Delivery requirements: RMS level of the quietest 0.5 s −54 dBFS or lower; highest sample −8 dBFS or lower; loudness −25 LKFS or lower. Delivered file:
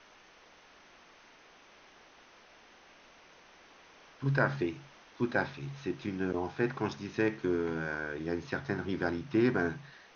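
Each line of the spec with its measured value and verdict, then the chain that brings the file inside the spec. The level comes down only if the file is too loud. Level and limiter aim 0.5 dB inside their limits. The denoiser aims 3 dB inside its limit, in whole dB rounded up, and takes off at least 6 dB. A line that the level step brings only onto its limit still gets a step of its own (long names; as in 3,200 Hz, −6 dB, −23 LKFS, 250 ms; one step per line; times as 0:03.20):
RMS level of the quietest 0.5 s −59 dBFS: in spec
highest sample −14.5 dBFS: in spec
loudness −33.0 LKFS: in spec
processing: no processing needed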